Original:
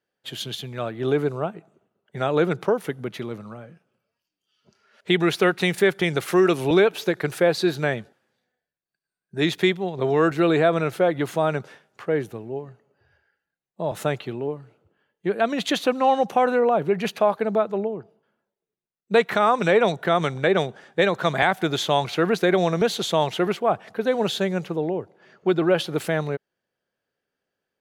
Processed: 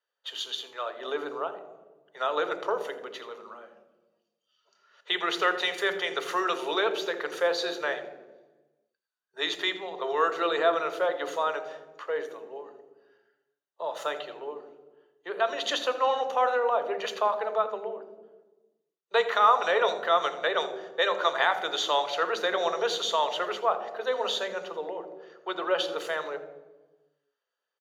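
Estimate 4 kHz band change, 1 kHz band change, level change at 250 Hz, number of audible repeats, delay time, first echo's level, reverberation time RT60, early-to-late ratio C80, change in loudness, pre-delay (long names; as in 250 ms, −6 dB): −1.0 dB, −2.0 dB, −17.5 dB, 1, 83 ms, −16.0 dB, 1.2 s, 13.0 dB, −5.5 dB, 3 ms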